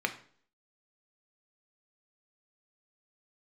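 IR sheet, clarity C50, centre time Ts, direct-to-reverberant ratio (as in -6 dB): 13.0 dB, 8 ms, 5.0 dB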